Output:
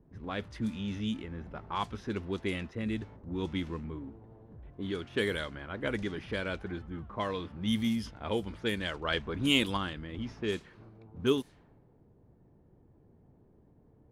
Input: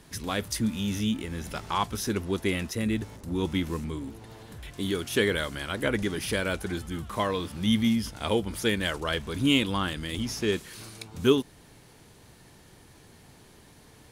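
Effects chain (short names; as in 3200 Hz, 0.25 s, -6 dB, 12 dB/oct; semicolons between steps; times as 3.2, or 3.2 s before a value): low-pass opened by the level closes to 480 Hz, open at -20.5 dBFS; 9.04–9.77 harmonic-percussive split percussive +6 dB; gain -6 dB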